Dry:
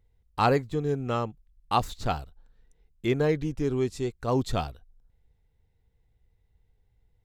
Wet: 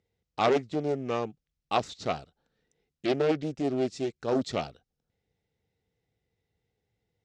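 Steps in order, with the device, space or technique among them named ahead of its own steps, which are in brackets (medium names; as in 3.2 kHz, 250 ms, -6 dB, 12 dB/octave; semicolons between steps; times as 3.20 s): full-range speaker at full volume (loudspeaker Doppler distortion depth 0.7 ms; cabinet simulation 170–7400 Hz, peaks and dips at 990 Hz -8 dB, 1.6 kHz -3 dB, 5.4 kHz +3 dB)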